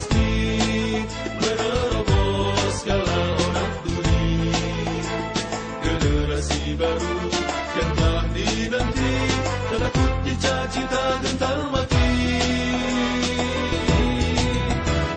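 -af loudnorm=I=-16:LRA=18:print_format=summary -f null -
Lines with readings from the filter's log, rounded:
Input Integrated:    -22.3 LUFS
Input True Peak:      -7.1 dBTP
Input LRA:             1.6 LU
Input Threshold:     -32.3 LUFS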